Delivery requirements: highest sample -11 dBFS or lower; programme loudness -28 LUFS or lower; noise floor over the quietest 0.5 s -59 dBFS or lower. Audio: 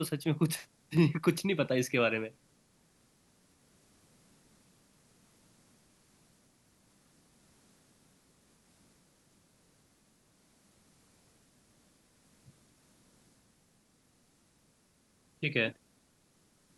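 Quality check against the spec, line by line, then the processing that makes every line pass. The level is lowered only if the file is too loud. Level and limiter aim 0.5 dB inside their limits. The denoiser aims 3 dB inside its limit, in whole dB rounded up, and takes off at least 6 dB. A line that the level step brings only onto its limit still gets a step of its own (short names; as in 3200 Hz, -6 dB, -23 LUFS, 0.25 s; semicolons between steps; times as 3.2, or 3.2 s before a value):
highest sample -13.0 dBFS: OK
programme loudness -31.0 LUFS: OK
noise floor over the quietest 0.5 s -69 dBFS: OK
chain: none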